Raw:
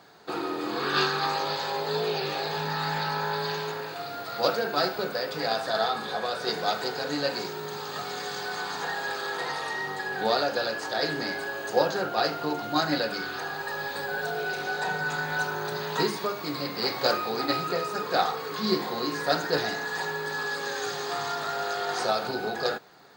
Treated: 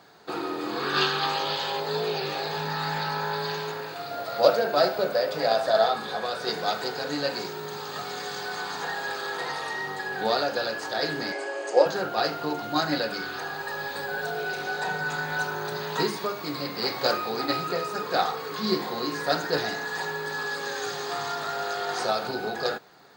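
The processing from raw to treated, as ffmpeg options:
ffmpeg -i in.wav -filter_complex "[0:a]asettb=1/sr,asplit=3[link_01][link_02][link_03];[link_01]atrim=end=1.014[link_04];[link_02]atrim=start=1.01:end=1.8,asetpts=PTS-STARTPTS,afade=type=in:duration=0.004:curve=qsin,afade=type=out:start_time=0.786:duration=0.004:curve=qsin,equalizer=frequency=3100:width_type=o:width=0.4:gain=10[link_05];[link_03]atrim=start=1.796[link_06];[link_04][link_05]acrossfade=duration=0.004:curve1=hsin:curve2=qsin[link_07];[link_07][link_06]acrossfade=duration=0.004:curve1=qsin:curve2=hsin,asettb=1/sr,asplit=3[link_08][link_09][link_10];[link_08]atrim=end=4.114[link_11];[link_09]atrim=start=4.11:end=5.95,asetpts=PTS-STARTPTS,afade=type=in:duration=0.004:curve=qsin,afade=type=out:start_time=1.836:duration=0.004:curve=qsin,equalizer=frequency=600:width=3.3:gain=11[link_12];[link_10]atrim=start=5.946[link_13];[link_11][link_12]acrossfade=duration=0.004:curve1=hsin:curve2=qsin[link_14];[link_14][link_13]acrossfade=duration=0.004:curve1=qsin:curve2=hsin,asettb=1/sr,asplit=3[link_15][link_16][link_17];[link_15]atrim=end=11.324[link_18];[link_16]atrim=start=11.32:end=11.86,asetpts=PTS-STARTPTS,afade=type=in:duration=0.004:curve=qsin,afade=type=out:start_time=0.536:duration=0.004:curve=qsin,highpass=frequency=300:width=0.5412,highpass=frequency=300:width=1.3066,equalizer=frequency=330:width_type=q:width=4:gain=4,equalizer=frequency=570:width_type=q:width=4:gain=7,equalizer=frequency=1500:width_type=q:width=4:gain=-5,equalizer=frequency=2200:width_type=q:width=4:gain=4,equalizer=frequency=3800:width_type=q:width=4:gain=-7,equalizer=frequency=7800:width_type=q:width=4:gain=7,lowpass=frequency=8800:width=0.5412,lowpass=frequency=8800:width=1.3066[link_19];[link_17]atrim=start=11.856[link_20];[link_18][link_19]acrossfade=duration=0.004:curve1=hsin:curve2=qsin[link_21];[link_21][link_20]acrossfade=duration=0.004:curve1=qsin:curve2=hsin" out.wav

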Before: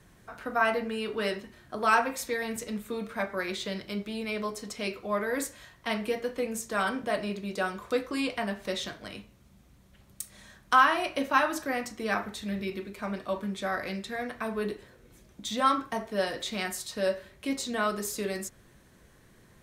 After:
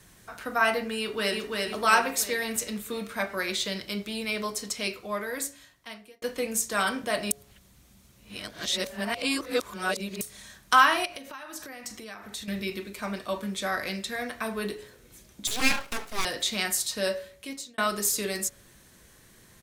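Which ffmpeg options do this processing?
ffmpeg -i in.wav -filter_complex "[0:a]asplit=2[link_01][link_02];[link_02]afade=type=in:start_time=0.98:duration=0.01,afade=type=out:start_time=1.59:duration=0.01,aecho=0:1:340|680|1020|1360|1700|2040|2380:0.749894|0.374947|0.187474|0.0937368|0.0468684|0.0234342|0.0117171[link_03];[link_01][link_03]amix=inputs=2:normalize=0,asettb=1/sr,asplit=3[link_04][link_05][link_06];[link_04]atrim=end=11.054[link_07];[link_05]atrim=start=11.05:end=12.48,asetpts=PTS-STARTPTS,afade=type=in:duration=0.004:curve=qsin,afade=type=out:start_time=1.426:duration=0.004:curve=qsin,acompressor=threshold=-40dB:ratio=8:attack=3.2:release=140:knee=1:detection=peak[link_08];[link_06]atrim=start=12.476[link_09];[link_07][link_08]acrossfade=duration=0.004:curve1=hsin:curve2=qsin[link_10];[link_10][link_09]acrossfade=duration=0.004:curve1=qsin:curve2=hsin,asettb=1/sr,asplit=3[link_11][link_12][link_13];[link_11]atrim=end=15.474[link_14];[link_12]atrim=start=15.47:end=16.25,asetpts=PTS-STARTPTS,afade=type=in:duration=0.004:curve=qsin,afade=type=out:start_time=0.776:duration=0.004:curve=qsin,aeval=exprs='abs(val(0))':channel_layout=same[link_15];[link_13]atrim=start=16.246[link_16];[link_14][link_15]acrossfade=duration=0.004:curve1=hsin:curve2=qsin[link_17];[link_17][link_16]acrossfade=duration=0.004:curve1=qsin:curve2=hsin,asplit=5[link_18][link_19][link_20][link_21][link_22];[link_18]atrim=end=6.22,asetpts=PTS-STARTPTS,afade=type=out:start_time=4.66:duration=1.56[link_23];[link_19]atrim=start=6.22:end=7.312,asetpts=PTS-STARTPTS,afade=type=in:duration=0.004:curve=hsin[link_24];[link_20]atrim=start=7.308:end=10.212,asetpts=PTS-STARTPTS,areverse[link_25];[link_21]atrim=start=10.208:end=17.78,asetpts=PTS-STARTPTS,afade=type=out:start_time=6.872:duration=0.7[link_26];[link_22]atrim=start=17.78,asetpts=PTS-STARTPTS,afade=type=in:duration=0.004:curve=hsin[link_27];[link_23][link_24]concat=n=2:v=0:a=1[link_28];[link_28][link_25]acrossfade=duration=0.004:curve1=hsin:curve2=hsin[link_29];[link_26][link_27]concat=n=2:v=0:a=1[link_30];[link_29][link_30]acrossfade=duration=0.004:curve1=hsin:curve2=hsin,highshelf=frequency=2700:gain=11,bandreject=frequency=140.7:width_type=h:width=4,bandreject=frequency=281.4:width_type=h:width=4,bandreject=frequency=422.1:width_type=h:width=4,bandreject=frequency=562.8:width_type=h:width=4,bandreject=frequency=703.5:width_type=h:width=4" out.wav

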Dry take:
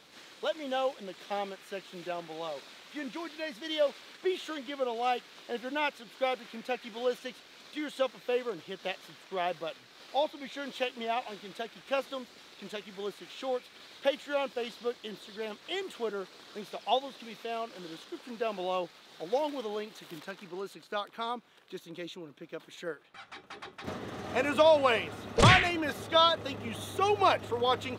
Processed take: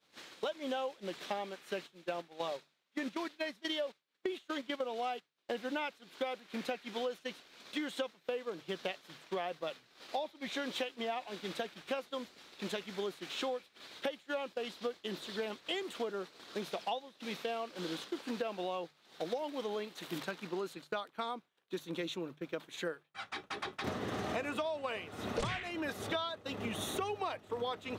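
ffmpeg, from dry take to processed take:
ffmpeg -i in.wav -filter_complex "[0:a]asplit=3[link_01][link_02][link_03];[link_01]afade=type=out:start_time=1.86:duration=0.02[link_04];[link_02]agate=range=-10dB:threshold=-40dB:ratio=16:release=100:detection=peak,afade=type=in:start_time=1.86:duration=0.02,afade=type=out:start_time=5.48:duration=0.02[link_05];[link_03]afade=type=in:start_time=5.48:duration=0.02[link_06];[link_04][link_05][link_06]amix=inputs=3:normalize=0,acompressor=threshold=-40dB:ratio=16,agate=range=-33dB:threshold=-45dB:ratio=3:detection=peak,bandreject=frequency=50:width_type=h:width=6,bandreject=frequency=100:width_type=h:width=6,bandreject=frequency=150:width_type=h:width=6,volume=6.5dB" out.wav

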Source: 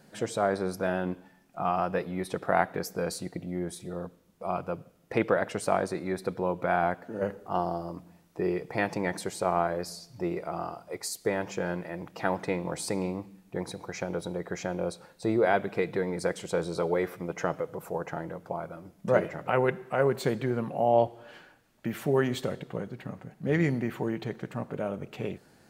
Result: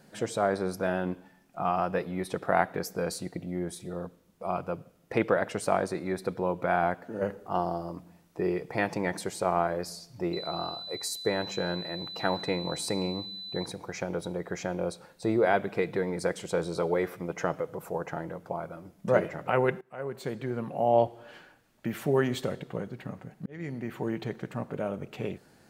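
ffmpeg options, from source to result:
ffmpeg -i in.wav -filter_complex "[0:a]asettb=1/sr,asplit=3[link_01][link_02][link_03];[link_01]atrim=end=10.334[link_04];[link_02]atrim=start=10.33:end=13.66,asetpts=PTS-STARTPTS,afade=type=in:duration=0.004:curve=qsin,afade=type=out:start_time=3.326:duration=0.004:curve=qsin,aeval=exprs='val(0)+0.0126*sin(2*PI*4000*n/s)':channel_layout=same[link_05];[link_03]atrim=start=13.656[link_06];[link_04][link_05]acrossfade=duration=0.004:curve1=hsin:curve2=qsin[link_07];[link_07][link_06]acrossfade=duration=0.004:curve1=qsin:curve2=hsin,asplit=3[link_08][link_09][link_10];[link_08]atrim=end=19.81,asetpts=PTS-STARTPTS,afade=type=out:start_time=19.806:duration=0.004:curve=hsin:silence=0.0891251[link_11];[link_09]atrim=start=19.81:end=23.46,asetpts=PTS-STARTPTS,afade=type=in:duration=1.14:silence=0.0891251,afade=type=out:start_time=3.646:duration=0.004:curve=hsin[link_12];[link_10]atrim=start=23.46,asetpts=PTS-STARTPTS,afade=type=in:duration=0.68[link_13];[link_11][link_12][link_13]concat=n=3:v=0:a=1" out.wav

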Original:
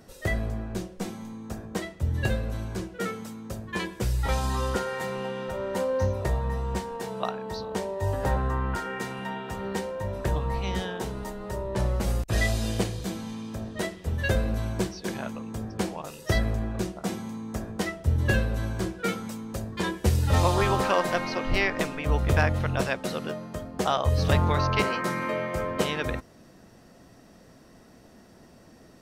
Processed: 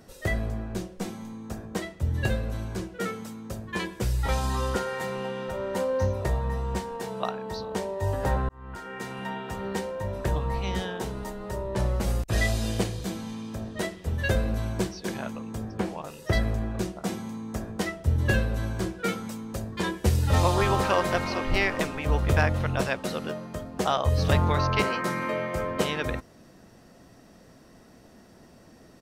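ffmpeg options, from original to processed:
ffmpeg -i in.wav -filter_complex "[0:a]asettb=1/sr,asplit=3[link_01][link_02][link_03];[link_01]atrim=end=15.664[link_04];[link_02]atrim=start=15.66:end=16.33,asetpts=PTS-STARTPTS,afade=type=in:duration=0.004:curve=qsin,afade=type=out:start_time=0.666:duration=0.004:curve=qsin,acrossover=split=2700[link_05][link_06];[link_06]acompressor=threshold=-48dB:ratio=4:attack=1:release=60[link_07];[link_05][link_07]amix=inputs=2:normalize=0[link_08];[link_03]atrim=start=16.326[link_09];[link_04][link_08]acrossfade=duration=0.004:curve1=hsin:curve2=qsin[link_10];[link_10][link_09]acrossfade=duration=0.004:curve1=qsin:curve2=hsin,asplit=2[link_11][link_12];[link_12]afade=type=in:start_time=20.26:duration=0.01,afade=type=out:start_time=21.03:duration=0.01,aecho=0:1:410|820|1230|1640|2050|2460|2870|3280:0.211349|0.137377|0.0892949|0.0580417|0.0377271|0.0245226|0.0159397|0.0103608[link_13];[link_11][link_13]amix=inputs=2:normalize=0,asplit=2[link_14][link_15];[link_14]atrim=end=8.49,asetpts=PTS-STARTPTS,afade=type=out:start_time=8.486:duration=0.004:curve=hsin[link_16];[link_15]atrim=start=8.49,asetpts=PTS-STARTPTS,afade=type=in:duration=0.76[link_17];[link_16][link_17]concat=n=2:v=0:a=1" out.wav

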